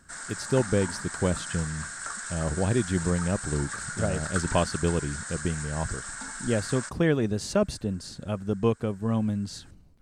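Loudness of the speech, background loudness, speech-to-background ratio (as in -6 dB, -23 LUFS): -29.0 LUFS, -35.0 LUFS, 6.0 dB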